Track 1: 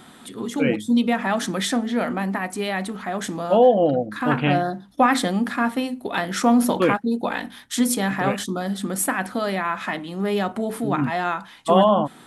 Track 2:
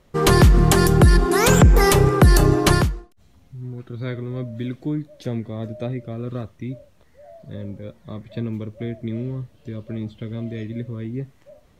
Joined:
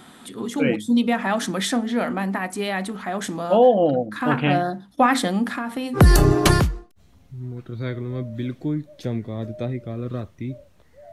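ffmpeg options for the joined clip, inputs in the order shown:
-filter_complex "[0:a]asettb=1/sr,asplit=3[s0][s1][s2];[s0]atrim=end=5.514[s3];[s1]atrim=start=5.51:end=6.01,asetpts=PTS-STARTPTS,afade=t=in:d=0.004:c=qsin,afade=t=out:st=0.496:d=0.004:c=qsin,acompressor=threshold=0.0794:ratio=10:attack=3.2:release=140:knee=1:detection=peak[s4];[s2]atrim=start=6.006[s5];[s3][s4]acrossfade=d=0.004:c1=hsin:c2=qsin[s6];[s6][s5]acrossfade=d=0.004:c1=qsin:c2=hsin,apad=whole_dur=11.12,atrim=end=11.12,atrim=end=6.01,asetpts=PTS-STARTPTS[s7];[1:a]atrim=start=2.14:end=7.33,asetpts=PTS-STARTPTS[s8];[s7][s8]acrossfade=d=0.08:c1=tri:c2=tri"

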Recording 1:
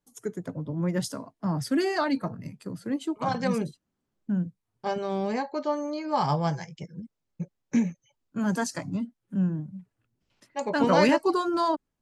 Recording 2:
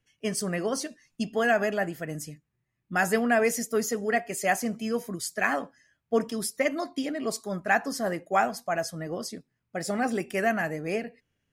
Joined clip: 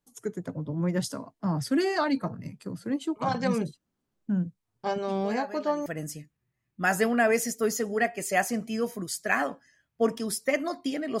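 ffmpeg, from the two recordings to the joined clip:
-filter_complex "[1:a]asplit=2[s0][s1];[0:a]apad=whole_dur=11.2,atrim=end=11.2,atrim=end=5.862[s2];[s1]atrim=start=1.978:end=7.32[s3];[s0]atrim=start=1.01:end=1.98,asetpts=PTS-STARTPTS,volume=0.168,afade=t=in:d=0.004:c=hsin,afade=t=out:st=0.966:d=0.004:c=hsin,adelay=215649S[s4];[s2][s3]acrossfade=d=0.004:c1=hsin:c2=hsin[s5];[s5][s4]amix=inputs=2:normalize=0"

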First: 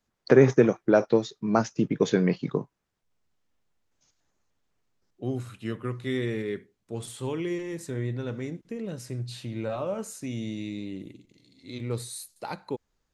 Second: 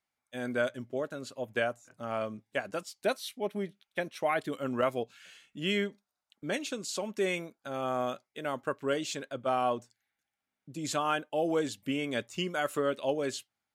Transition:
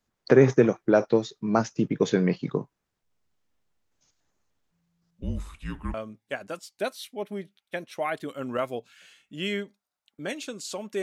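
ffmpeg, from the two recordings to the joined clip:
-filter_complex "[0:a]asplit=3[s0][s1][s2];[s0]afade=t=out:st=4.71:d=0.02[s3];[s1]afreqshift=-170,afade=t=in:st=4.71:d=0.02,afade=t=out:st=5.94:d=0.02[s4];[s2]afade=t=in:st=5.94:d=0.02[s5];[s3][s4][s5]amix=inputs=3:normalize=0,apad=whole_dur=11.02,atrim=end=11.02,atrim=end=5.942[s6];[1:a]atrim=start=2.178:end=7.26[s7];[s6][s7]acrossfade=d=0.004:c1=hsin:c2=hsin"

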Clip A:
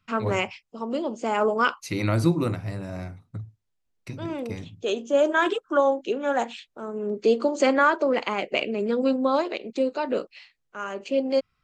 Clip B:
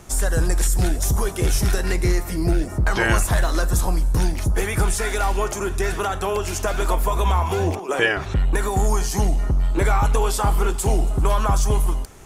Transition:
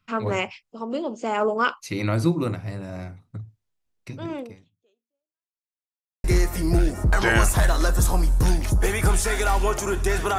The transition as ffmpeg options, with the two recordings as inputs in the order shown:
-filter_complex "[0:a]apad=whole_dur=10.38,atrim=end=10.38,asplit=2[s0][s1];[s0]atrim=end=5.58,asetpts=PTS-STARTPTS,afade=t=out:st=4.39:d=1.19:c=exp[s2];[s1]atrim=start=5.58:end=6.24,asetpts=PTS-STARTPTS,volume=0[s3];[1:a]atrim=start=1.98:end=6.12,asetpts=PTS-STARTPTS,afade=t=in:d=0.004:c=hsin[s4];[s2][s3][s4]concat=n=3:v=0:a=1"

